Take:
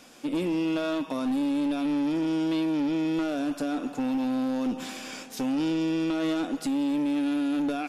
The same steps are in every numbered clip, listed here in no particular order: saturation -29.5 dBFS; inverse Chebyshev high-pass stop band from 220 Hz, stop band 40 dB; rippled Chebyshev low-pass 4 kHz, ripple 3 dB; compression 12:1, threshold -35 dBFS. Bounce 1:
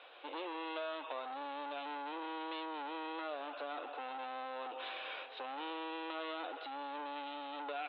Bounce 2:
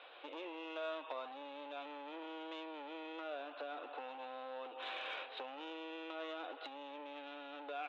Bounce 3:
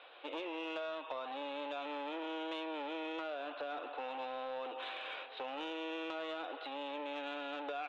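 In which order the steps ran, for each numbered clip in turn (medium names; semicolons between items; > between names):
saturation > inverse Chebyshev high-pass > compression > rippled Chebyshev low-pass; rippled Chebyshev low-pass > compression > saturation > inverse Chebyshev high-pass; inverse Chebyshev high-pass > compression > rippled Chebyshev low-pass > saturation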